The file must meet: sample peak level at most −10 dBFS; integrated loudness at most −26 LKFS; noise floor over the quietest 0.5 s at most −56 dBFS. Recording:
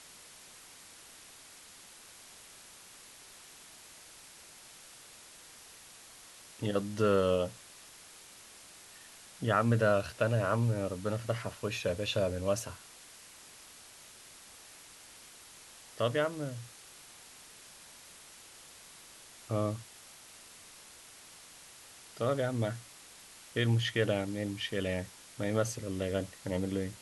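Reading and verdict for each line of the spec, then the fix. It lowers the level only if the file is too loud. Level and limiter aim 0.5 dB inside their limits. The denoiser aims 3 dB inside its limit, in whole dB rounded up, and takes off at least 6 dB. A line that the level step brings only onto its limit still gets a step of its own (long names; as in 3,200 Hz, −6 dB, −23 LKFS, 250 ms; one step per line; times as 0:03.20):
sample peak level −13.0 dBFS: in spec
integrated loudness −32.5 LKFS: in spec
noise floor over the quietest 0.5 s −54 dBFS: out of spec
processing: broadband denoise 6 dB, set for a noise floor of −54 dBFS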